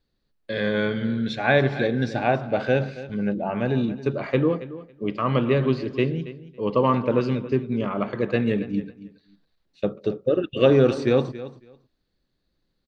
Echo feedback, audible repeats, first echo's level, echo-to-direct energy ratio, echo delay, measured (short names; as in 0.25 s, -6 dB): 16%, 2, -15.5 dB, -15.5 dB, 0.277 s